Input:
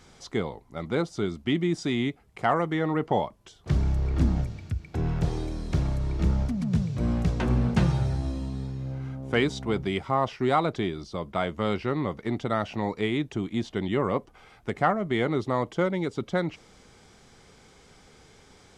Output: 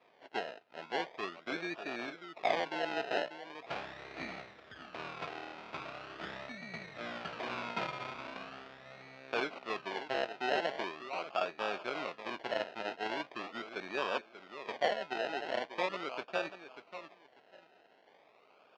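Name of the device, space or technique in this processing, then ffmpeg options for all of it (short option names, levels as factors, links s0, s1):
circuit-bent sampling toy: -filter_complex "[0:a]asettb=1/sr,asplit=3[s0][s1][s2];[s0]atrim=end=14.724[s3];[s1]atrim=start=14.72:end=15.7,asetpts=PTS-STARTPTS,afade=t=in:d=0.004:c=qsin,afade=t=out:st=0.976:d=0.004:c=qsin,lowshelf=f=230:g=-5.5[s4];[s2]atrim=start=15.696[s5];[s3][s4]acrossfade=d=0.004:c1=hsin:c2=qsin[s6];[s6][s5]acrossfade=d=0.004:c1=qsin:c2=hsin,aecho=1:1:591|1182|1773:0.282|0.0648|0.0149,acrusher=samples=30:mix=1:aa=0.000001:lfo=1:lforange=18:lforate=0.41,highpass=500,equalizer=f=660:t=q:w=4:g=6,equalizer=f=1300:t=q:w=4:g=4,equalizer=f=2500:t=q:w=4:g=6,lowpass=f=4500:w=0.5412,lowpass=f=4500:w=1.3066,volume=0.422"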